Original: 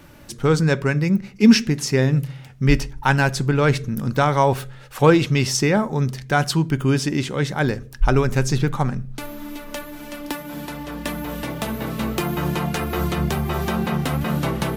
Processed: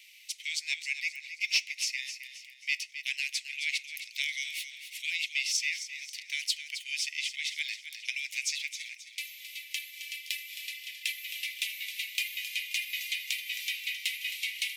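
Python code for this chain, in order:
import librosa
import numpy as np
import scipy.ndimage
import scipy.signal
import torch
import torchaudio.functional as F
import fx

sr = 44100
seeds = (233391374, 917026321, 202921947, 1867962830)

p1 = scipy.signal.sosfilt(scipy.signal.butter(16, 2100.0, 'highpass', fs=sr, output='sos'), x)
p2 = fx.tilt_eq(p1, sr, slope=-3.5)
p3 = fx.rider(p2, sr, range_db=3, speed_s=0.5)
p4 = 10.0 ** (-19.0 / 20.0) * np.tanh(p3 / 10.0 ** (-19.0 / 20.0))
p5 = p4 + fx.echo_feedback(p4, sr, ms=266, feedback_pct=39, wet_db=-10.5, dry=0)
y = p5 * 10.0 ** (5.5 / 20.0)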